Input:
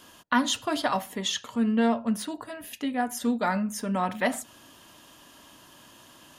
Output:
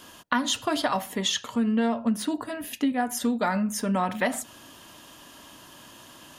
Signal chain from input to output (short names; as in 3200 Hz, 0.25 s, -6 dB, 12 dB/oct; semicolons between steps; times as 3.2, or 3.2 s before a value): 2.05–2.92 bell 270 Hz +6.5 dB 0.58 oct; compressor 5:1, threshold -25 dBFS, peak gain reduction 7.5 dB; gain +4 dB